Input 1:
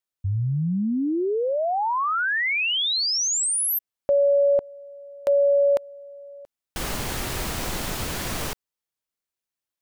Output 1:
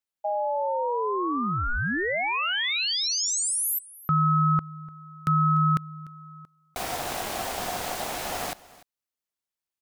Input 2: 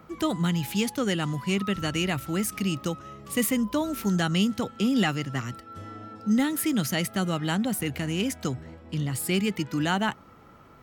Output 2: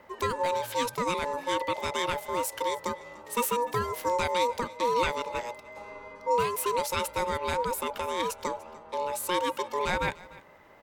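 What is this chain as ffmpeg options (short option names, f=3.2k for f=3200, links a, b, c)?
-af "aeval=exprs='val(0)*sin(2*PI*720*n/s)':c=same,aecho=1:1:296:0.0944"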